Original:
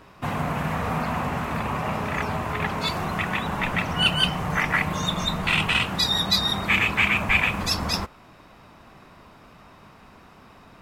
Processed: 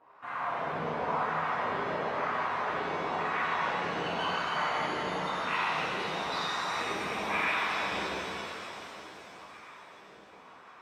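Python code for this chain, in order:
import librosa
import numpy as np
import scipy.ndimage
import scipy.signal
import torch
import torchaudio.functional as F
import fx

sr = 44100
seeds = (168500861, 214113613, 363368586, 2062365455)

y = fx.echo_feedback(x, sr, ms=733, feedback_pct=60, wet_db=-18.0)
y = fx.wah_lfo(y, sr, hz=0.97, low_hz=390.0, high_hz=1400.0, q=2.4)
y = fx.rev_shimmer(y, sr, seeds[0], rt60_s=3.2, semitones=7, shimmer_db=-8, drr_db=-9.0)
y = y * 10.0 ** (-7.0 / 20.0)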